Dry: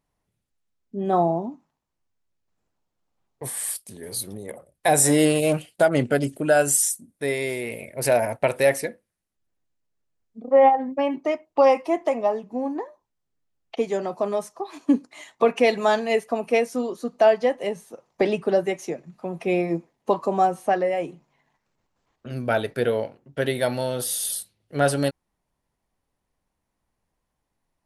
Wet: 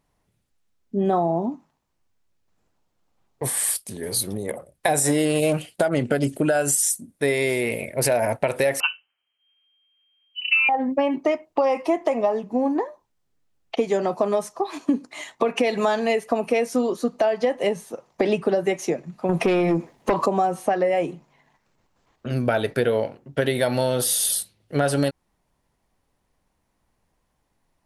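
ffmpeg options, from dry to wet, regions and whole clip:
ffmpeg -i in.wav -filter_complex "[0:a]asettb=1/sr,asplit=3[link_01][link_02][link_03];[link_01]atrim=end=8.804[link_04];[link_02]atrim=start=8.8:end=10.69,asetpts=PTS-STARTPTS,afade=type=in:duration=0.004:curve=qsin,afade=type=out:start_time=1.886:duration=0.004:curve=qsin,lowpass=frequency=2700:width_type=q:width=0.5098,lowpass=frequency=2700:width_type=q:width=0.6013,lowpass=frequency=2700:width_type=q:width=0.9,lowpass=frequency=2700:width_type=q:width=2.563,afreqshift=-3200,equalizer=frequency=2300:width_type=o:width=0.2:gain=7,acompressor=threshold=-17dB:ratio=2:attack=3.2:release=140:knee=1:detection=peak[link_05];[link_03]atrim=start=10.686[link_06];[link_04][link_05]acrossfade=duration=0.004:curve1=hsin:curve2=qsin[link_07];[link_07][link_06]acrossfade=duration=0.004:curve1=qsin:curve2=hsin,asettb=1/sr,asplit=3[link_08][link_09][link_10];[link_08]atrim=end=19.294[link_11];[link_09]atrim=start=19.29:end=20.26,asetpts=PTS-STARTPTS,afade=type=in:duration=0.004:curve=qsin,afade=type=out:start_time=0.966:duration=0.004:curve=qsin,acompressor=threshold=-27dB:ratio=3:attack=3.2:release=140:knee=1:detection=peak,aeval=exprs='0.133*sin(PI/2*1.78*val(0)/0.133)':channel_layout=same[link_12];[link_10]atrim=start=20.256[link_13];[link_11][link_12]acrossfade=duration=0.004:curve1=hsin:curve2=qsin[link_14];[link_14][link_13]acrossfade=duration=0.004:curve1=qsin:curve2=hsin,highshelf=frequency=11000:gain=-3,alimiter=limit=-13.5dB:level=0:latency=1:release=116,acompressor=threshold=-24dB:ratio=6,volume=7dB" out.wav

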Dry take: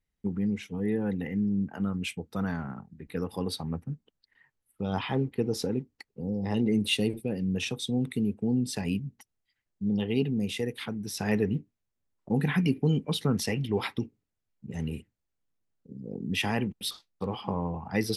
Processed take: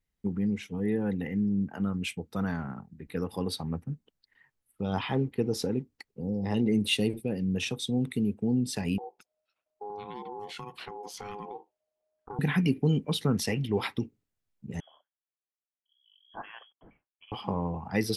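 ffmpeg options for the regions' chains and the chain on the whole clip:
ffmpeg -i in.wav -filter_complex "[0:a]asettb=1/sr,asplit=3[link_01][link_02][link_03];[link_01]atrim=end=8.984[link_04];[link_02]atrim=start=8.98:end=12.39,asetpts=PTS-STARTPTS,afade=type=in:duration=0.004:curve=qsin,afade=type=out:start_time=3.406:duration=0.004:curve=qsin,highshelf=frequency=8000:gain=-11,acompressor=threshold=-34dB:ratio=6:attack=3.2:release=140:knee=1:detection=peak,aeval=exprs='val(0)*sin(2*PI*620*n/s)':channel_layout=same[link_05];[link_03]atrim=start=12.386[link_06];[link_04][link_05]acrossfade=duration=0.004:curve1=hsin:curve2=qsin[link_07];[link_07][link_06]acrossfade=duration=0.004:curve1=qsin:curve2=hsin,asettb=1/sr,asplit=3[link_08][link_09][link_10];[link_08]atrim=end=14.804[link_11];[link_09]atrim=start=14.8:end=17.32,asetpts=PTS-STARTPTS,afade=type=in:duration=0.004:curve=qsin,afade=type=out:start_time=2.516:duration=0.004:curve=qsin,aderivative,lowpass=frequency=3000:width_type=q:width=0.5098,lowpass=frequency=3000:width_type=q:width=0.6013,lowpass=frequency=3000:width_type=q:width=0.9,lowpass=frequency=3000:width_type=q:width=2.563,afreqshift=-3500[link_12];[link_10]atrim=start=17.316[link_13];[link_11][link_12]acrossfade=duration=0.004:curve1=hsin:curve2=qsin[link_14];[link_14][link_13]acrossfade=duration=0.004:curve1=qsin:curve2=hsin" out.wav

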